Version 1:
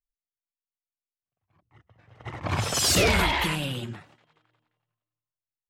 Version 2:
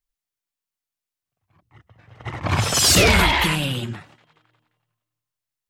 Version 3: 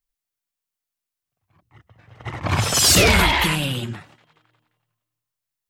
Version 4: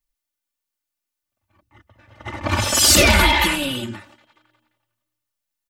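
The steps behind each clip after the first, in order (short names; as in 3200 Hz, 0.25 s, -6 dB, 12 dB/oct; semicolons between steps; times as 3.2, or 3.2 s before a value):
bell 510 Hz -2.5 dB 1.7 oct; gain +7 dB
high shelf 9600 Hz +3.5 dB
comb 3.4 ms, depth 91%; gain -1 dB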